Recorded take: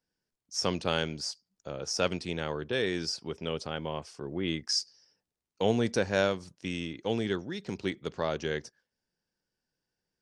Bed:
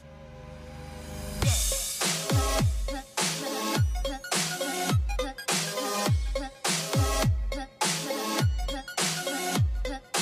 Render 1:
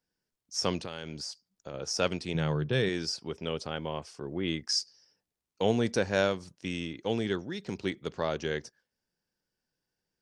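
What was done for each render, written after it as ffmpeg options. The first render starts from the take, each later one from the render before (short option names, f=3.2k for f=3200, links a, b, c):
-filter_complex "[0:a]asettb=1/sr,asplit=3[a][b][c];[a]atrim=end=0.824[d];[b]atrim=start=0.82:end=1.74,asetpts=PTS-STARTPTS,afade=t=in:d=0.004:c=qsin,afade=t=out:st=0.916:d=0.004:c=qsin,acompressor=threshold=-34dB:ratio=6:attack=3.2:release=140:knee=1:detection=peak[e];[c]atrim=start=1.736[f];[d][e]acrossfade=d=0.004:c1=hsin:c2=qsin[g];[g][f]acrossfade=d=0.004:c1=qsin:c2=hsin,asettb=1/sr,asplit=3[h][i][j];[h]atrim=end=2.344[k];[i]atrim=start=2.34:end=2.89,asetpts=PTS-STARTPTS,afade=t=in:d=0.004:c=qsin,afade=t=out:st=0.546:d=0.004:c=qsin,equalizer=f=140:t=o:w=0.77:g=14[l];[j]atrim=start=2.886[m];[k][l]acrossfade=d=0.004:c1=hsin:c2=qsin[n];[n][m]acrossfade=d=0.004:c1=qsin:c2=hsin"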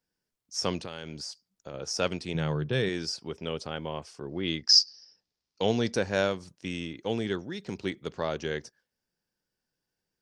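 -filter_complex "[0:a]asettb=1/sr,asplit=3[a][b][c];[a]atrim=end=4.294[d];[b]atrim=start=4.29:end=5.93,asetpts=PTS-STARTPTS,afade=t=in:d=0.004:c=qsin,afade=t=out:st=1.636:d=0.004:c=qsin,lowpass=f=5.1k:t=q:w=3.7[e];[c]atrim=start=5.926[f];[d][e]acrossfade=d=0.004:c1=hsin:c2=qsin[g];[g][f]acrossfade=d=0.004:c1=qsin:c2=hsin"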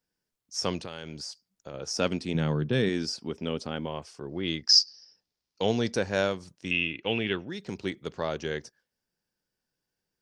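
-filter_complex "[0:a]asettb=1/sr,asplit=3[a][b][c];[a]atrim=end=1.944[d];[b]atrim=start=1.94:end=3.87,asetpts=PTS-STARTPTS,afade=t=in:d=0.004:c=qsin,afade=t=out:st=1.926:d=0.004:c=qsin,equalizer=f=240:t=o:w=0.77:g=8[e];[c]atrim=start=3.866[f];[d][e]acrossfade=d=0.004:c1=hsin:c2=qsin[g];[g][f]acrossfade=d=0.004:c1=qsin:c2=hsin,asettb=1/sr,asplit=3[h][i][j];[h]atrim=end=6.714[k];[i]atrim=start=6.71:end=7.48,asetpts=PTS-STARTPTS,afade=t=in:d=0.004:c=qsin,afade=t=out:st=0.766:d=0.004:c=qsin,lowpass=f=2.7k:t=q:w=7.7[l];[j]atrim=start=7.476[m];[k][l]acrossfade=d=0.004:c1=hsin:c2=qsin[n];[n][m]acrossfade=d=0.004:c1=qsin:c2=hsin"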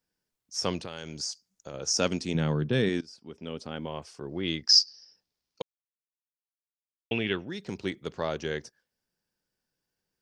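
-filter_complex "[0:a]asettb=1/sr,asplit=3[a][b][c];[a]atrim=end=0.974[d];[b]atrim=start=0.97:end=2.35,asetpts=PTS-STARTPTS,afade=t=in:d=0.004:c=qsin,afade=t=out:st=1.376:d=0.004:c=qsin,equalizer=f=6.5k:w=2:g=9.5[e];[c]atrim=start=2.346[f];[d][e]acrossfade=d=0.004:c1=hsin:c2=qsin[g];[g][f]acrossfade=d=0.004:c1=qsin:c2=hsin,asplit=4[h][i][j][k];[h]atrim=end=3.01,asetpts=PTS-STARTPTS,afade=t=out:st=3.006:d=0.004:c=hsin:silence=0.0891251[l];[i]atrim=start=3.01:end=5.62,asetpts=PTS-STARTPTS,afade=t=in:d=1.11:silence=0.0891251,afade=t=out:st=2.606:d=0.004:c=hsin[m];[j]atrim=start=5.62:end=7.11,asetpts=PTS-STARTPTS,volume=0[n];[k]atrim=start=7.11,asetpts=PTS-STARTPTS,afade=t=in:d=0.004:c=hsin[o];[l][m][n][o]concat=n=4:v=0:a=1"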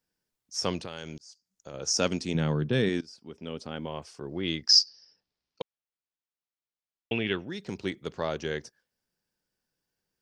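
-filter_complex "[0:a]asettb=1/sr,asplit=3[a][b][c];[a]atrim=end=4.884[d];[b]atrim=start=4.88:end=7.26,asetpts=PTS-STARTPTS,afade=t=in:d=0.004:c=qsin,afade=t=out:st=2.376:d=0.004:c=qsin,lowpass=4.9k[e];[c]atrim=start=7.256[f];[d][e]acrossfade=d=0.004:c1=hsin:c2=qsin[g];[g][f]acrossfade=d=0.004:c1=qsin:c2=hsin,asplit=2[h][i];[h]atrim=end=1.18,asetpts=PTS-STARTPTS,afade=t=out:st=1.176:d=0.004:c=hsin[j];[i]atrim=start=1.18,asetpts=PTS-STARTPTS,afade=t=in:d=0.64[k];[j][k]concat=n=2:v=0:a=1"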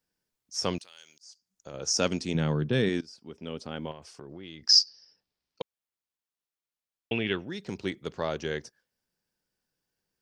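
-filter_complex "[0:a]asettb=1/sr,asplit=3[a][b][c];[a]atrim=end=0.784[d];[b]atrim=start=0.78:end=1.23,asetpts=PTS-STARTPTS,afade=t=in:d=0.004:c=qsin,afade=t=out:st=0.446:d=0.004:c=qsin,aderivative[e];[c]atrim=start=1.226[f];[d][e]acrossfade=d=0.004:c1=hsin:c2=qsin[g];[g][f]acrossfade=d=0.004:c1=qsin:c2=hsin,asettb=1/sr,asplit=3[h][i][j];[h]atrim=end=3.914[k];[i]atrim=start=3.91:end=4.63,asetpts=PTS-STARTPTS,afade=t=in:d=0.004:c=qsin,afade=t=out:st=0.716:d=0.004:c=qsin,acompressor=threshold=-39dB:ratio=8:attack=3.2:release=140:knee=1:detection=peak[l];[j]atrim=start=4.626[m];[k][l]acrossfade=d=0.004:c1=hsin:c2=qsin[n];[n][m]acrossfade=d=0.004:c1=qsin:c2=hsin"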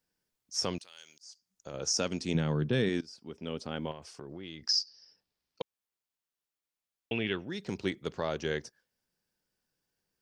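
-af "alimiter=limit=-18.5dB:level=0:latency=1:release=304"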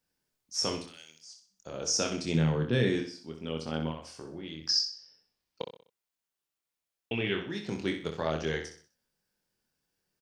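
-filter_complex "[0:a]asplit=2[a][b];[b]adelay=25,volume=-5dB[c];[a][c]amix=inputs=2:normalize=0,aecho=1:1:63|126|189|252:0.398|0.151|0.0575|0.0218"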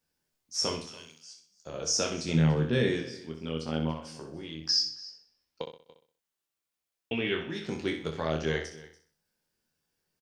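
-filter_complex "[0:a]asplit=2[a][b];[b]adelay=13,volume=-7dB[c];[a][c]amix=inputs=2:normalize=0,aecho=1:1:287:0.112"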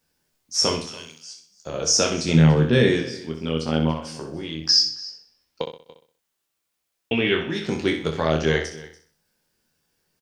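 -af "volume=9dB"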